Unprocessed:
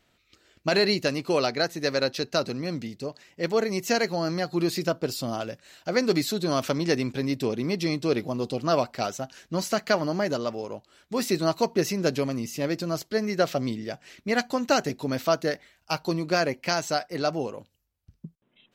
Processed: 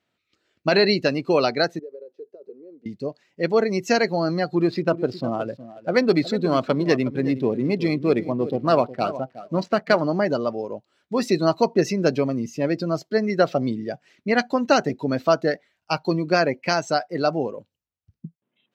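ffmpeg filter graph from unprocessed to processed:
ffmpeg -i in.wav -filter_complex "[0:a]asettb=1/sr,asplit=3[link_01][link_02][link_03];[link_01]atrim=end=1.794[link_04];[link_02]atrim=start=1.79:end=2.86,asetpts=PTS-STARTPTS,afade=type=in:duration=0.004:curve=qsin,afade=type=out:start_time=1.066:duration=0.004:curve=qsin,acompressor=threshold=-31dB:ratio=10:attack=3.2:release=140:knee=1:detection=peak,bandpass=frequency=430:width_type=q:width=4.8,aemphasis=mode=production:type=50fm[link_05];[link_03]atrim=start=2.856[link_06];[link_04][link_05]acrossfade=duration=0.004:curve1=hsin:curve2=qsin[link_07];[link_07][link_06]acrossfade=duration=0.004:curve1=qsin:curve2=hsin,asettb=1/sr,asplit=3[link_08][link_09][link_10];[link_08]atrim=end=4.554[link_11];[link_09]atrim=start=4.55:end=10.01,asetpts=PTS-STARTPTS,afade=type=in:duration=0.004:curve=qsin,afade=type=out:start_time=5.456:duration=0.004:curve=qsin,adynamicsmooth=sensitivity=8:basefreq=1100,aecho=1:1:364|728:0.224|0.0381,atrim=end_sample=240786[link_12];[link_10]atrim=start=10.006[link_13];[link_11][link_12]acrossfade=duration=0.004:curve1=hsin:curve2=qsin[link_14];[link_14][link_13]acrossfade=duration=0.004:curve1=qsin:curve2=hsin,afftdn=noise_reduction=13:noise_floor=-35,highpass=110,highshelf=frequency=7700:gain=-11,volume=5dB" out.wav

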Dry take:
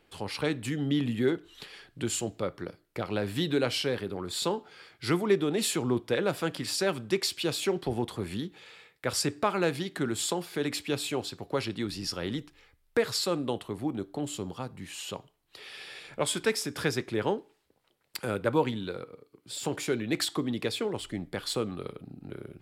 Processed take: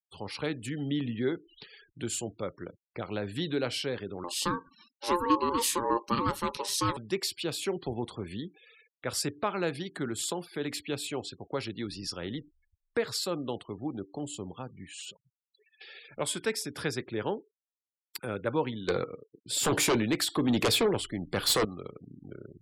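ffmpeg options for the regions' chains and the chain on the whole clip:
ffmpeg -i in.wav -filter_complex "[0:a]asettb=1/sr,asplit=3[link_01][link_02][link_03];[link_01]atrim=end=4.244[link_04];[link_02]atrim=start=4.24:end=6.97,asetpts=PTS-STARTPTS,afade=type=in:duration=0.004:curve=qsin,afade=type=out:start_time=2.726:duration=0.004:curve=qsin,acontrast=60,equalizer=frequency=1500:width_type=o:width=0.89:gain=-10,aeval=exprs='val(0)*sin(2*PI*700*n/s)':channel_layout=same[link_05];[link_03]atrim=start=6.966[link_06];[link_04][link_05]acrossfade=duration=0.004:curve1=hsin:curve2=qsin[link_07];[link_07][link_06]acrossfade=duration=0.004:curve1=qsin:curve2=hsin,asettb=1/sr,asplit=3[link_08][link_09][link_10];[link_08]atrim=end=15.114[link_11];[link_09]atrim=start=15.11:end=15.81,asetpts=PTS-STARTPTS,afade=type=in:duration=0.004:curve=qsin,afade=type=out:start_time=0.696:duration=0.004:curve=qsin,highshelf=frequency=4800:gain=-7.5,bandreject=frequency=119.3:width_type=h:width=4,bandreject=frequency=238.6:width_type=h:width=4,bandreject=frequency=357.9:width_type=h:width=4,bandreject=frequency=477.2:width_type=h:width=4,bandreject=frequency=596.5:width_type=h:width=4,bandreject=frequency=715.8:width_type=h:width=4,bandreject=frequency=835.1:width_type=h:width=4,bandreject=frequency=954.4:width_type=h:width=4,bandreject=frequency=1073.7:width_type=h:width=4,bandreject=frequency=1193:width_type=h:width=4,bandreject=frequency=1312.3:width_type=h:width=4,bandreject=frequency=1431.6:width_type=h:width=4,bandreject=frequency=1550.9:width_type=h:width=4,bandreject=frequency=1670.2:width_type=h:width=4,bandreject=frequency=1789.5:width_type=h:width=4,bandreject=frequency=1908.8:width_type=h:width=4,bandreject=frequency=2028.1:width_type=h:width=4,bandreject=frequency=2147.4:width_type=h:width=4,bandreject=frequency=2266.7:width_type=h:width=4,bandreject=frequency=2386:width_type=h:width=4,bandreject=frequency=2505.3:width_type=h:width=4,bandreject=frequency=2624.6:width_type=h:width=4,bandreject=frequency=2743.9:width_type=h:width=4,bandreject=frequency=2863.2:width_type=h:width=4,bandreject=frequency=2982.5:width_type=h:width=4,acompressor=threshold=-53dB:ratio=4:attack=3.2:release=140:knee=1:detection=peak[link_12];[link_10]atrim=start=15.806[link_13];[link_11][link_12]acrossfade=duration=0.004:curve1=hsin:curve2=qsin[link_14];[link_14][link_13]acrossfade=duration=0.004:curve1=qsin:curve2=hsin,asettb=1/sr,asplit=3[link_15][link_16][link_17];[link_15]atrim=end=18.884[link_18];[link_16]atrim=start=18.88:end=21.65,asetpts=PTS-STARTPTS,afade=type=in:duration=0.004:curve=qsin,afade=type=out:start_time=2.766:duration=0.004:curve=qsin,tremolo=f=1.1:d=0.69,aeval=exprs='0.141*sin(PI/2*3.16*val(0)/0.141)':channel_layout=same[link_19];[link_17]atrim=start=21.646[link_20];[link_18][link_19]acrossfade=duration=0.004:curve1=hsin:curve2=qsin[link_21];[link_21][link_20]acrossfade=duration=0.004:curve1=qsin:curve2=hsin,afftfilt=real='re*gte(hypot(re,im),0.00631)':imag='im*gte(hypot(re,im),0.00631)':win_size=1024:overlap=0.75,highshelf=frequency=12000:gain=7.5,volume=-3.5dB" out.wav

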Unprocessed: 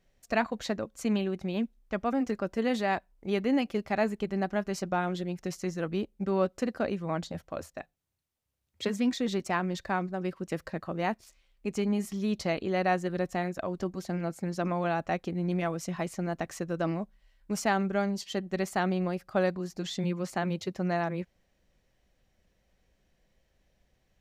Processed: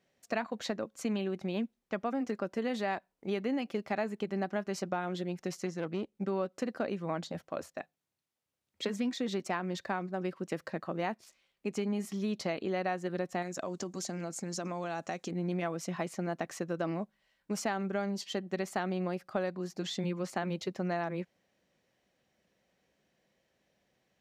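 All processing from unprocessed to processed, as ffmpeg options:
ffmpeg -i in.wav -filter_complex "[0:a]asettb=1/sr,asplit=3[link_01][link_02][link_03];[link_01]atrim=end=5.664[link_04];[link_02]atrim=start=5.66:end=6.15,asetpts=PTS-STARTPTS,afade=type=in:duration=0.004:curve=qsin,afade=type=out:start_time=0.486:duration=0.004:curve=qsin,lowpass=10000,aeval=exprs='(tanh(17.8*val(0)+0.45)-tanh(0.45))/17.8':channel_layout=same[link_05];[link_03]atrim=start=6.146[link_06];[link_04][link_05]acrossfade=duration=0.004:curve1=hsin:curve2=qsin[link_07];[link_07][link_06]acrossfade=duration=0.004:curve1=qsin:curve2=hsin,asettb=1/sr,asplit=3[link_08][link_09][link_10];[link_08]atrim=end=13.424[link_11];[link_09]atrim=start=13.42:end=15.31,asetpts=PTS-STARTPTS,afade=type=in:duration=0.004:curve=qsin,afade=type=out:start_time=1.886:duration=0.004:curve=qsin,equalizer=frequency=6900:width=1.1:gain=15,acompressor=threshold=-31dB:ratio=6:attack=3.2:release=140:knee=1:detection=peak[link_12];[link_10]atrim=start=15.306[link_13];[link_11][link_12]acrossfade=duration=0.004:curve1=hsin:curve2=qsin[link_14];[link_14][link_13]acrossfade=duration=0.004:curve1=qsin:curve2=hsin,highpass=170,acompressor=threshold=-29dB:ratio=6,highshelf=frequency=8800:gain=-5.5" out.wav

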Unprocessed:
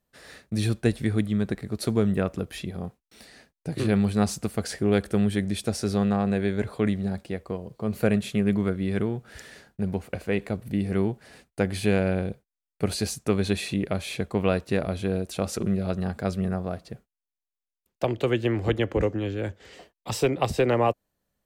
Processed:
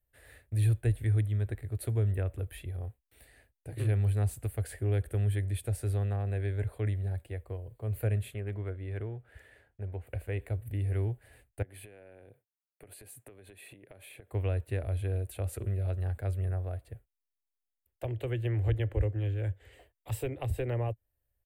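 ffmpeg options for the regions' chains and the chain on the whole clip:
ffmpeg -i in.wav -filter_complex "[0:a]asettb=1/sr,asplit=3[link_01][link_02][link_03];[link_01]atrim=end=8.344[link_04];[link_02]atrim=start=8.34:end=10.07,asetpts=PTS-STARTPTS,afade=type=in:duration=0.004:curve=qsin,afade=type=out:start_time=1.726:duration=0.004:curve=qsin,lowpass=frequency=2300:poles=1,lowshelf=frequency=180:gain=-8,asoftclip=type=hard:threshold=-16.5dB[link_05];[link_03]atrim=start=10.066[link_06];[link_04][link_05]acrossfade=duration=0.004:curve1=hsin:curve2=qsin[link_07];[link_07][link_06]acrossfade=duration=0.004:curve1=qsin:curve2=hsin,asettb=1/sr,asplit=3[link_08][link_09][link_10];[link_08]atrim=end=11.624[link_11];[link_09]atrim=start=11.62:end=14.32,asetpts=PTS-STARTPTS,afade=type=in:duration=0.004:curve=qsin,afade=type=out:start_time=2.696:duration=0.004:curve=qsin,highpass=frequency=150:width=0.5412,highpass=frequency=150:width=1.3066,equalizer=frequency=5400:width=0.89:gain=-5,acompressor=threshold=-36dB:ratio=12:attack=3.2:release=140:knee=1:detection=peak[link_12];[link_10]atrim=start=14.316[link_13];[link_11][link_12]acrossfade=duration=0.004:curve1=hsin:curve2=qsin[link_14];[link_14][link_13]acrossfade=duration=0.004:curve1=qsin:curve2=hsin,acrossover=split=420[link_15][link_16];[link_16]acompressor=threshold=-29dB:ratio=2.5[link_17];[link_15][link_17]amix=inputs=2:normalize=0,firequalizer=gain_entry='entry(110,0);entry(170,-30);entry(270,-16);entry(560,-12);entry(1200,-19);entry(1700,-11);entry(3000,-14);entry(5500,-28);entry(8300,-10);entry(13000,-4)':delay=0.05:min_phase=1,volume=3dB" out.wav

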